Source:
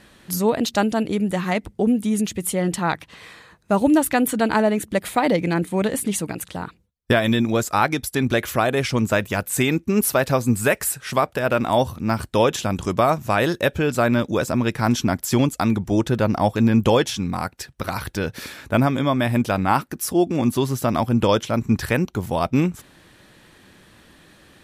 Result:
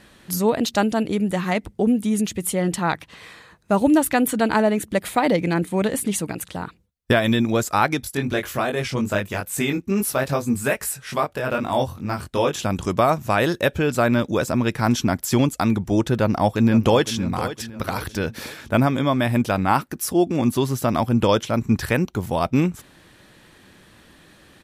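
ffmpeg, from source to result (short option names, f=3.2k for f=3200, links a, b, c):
-filter_complex "[0:a]asplit=3[a][b][c];[a]afade=t=out:st=8.01:d=0.02[d];[b]flanger=delay=20:depth=2.5:speed=2.4,afade=t=in:st=8.01:d=0.02,afade=t=out:st=12.58:d=0.02[e];[c]afade=t=in:st=12.58:d=0.02[f];[d][e][f]amix=inputs=3:normalize=0,asplit=2[g][h];[h]afade=t=in:st=16.19:d=0.01,afade=t=out:st=17.15:d=0.01,aecho=0:1:510|1020|1530|2040:0.223872|0.100742|0.0453341|0.0204003[i];[g][i]amix=inputs=2:normalize=0"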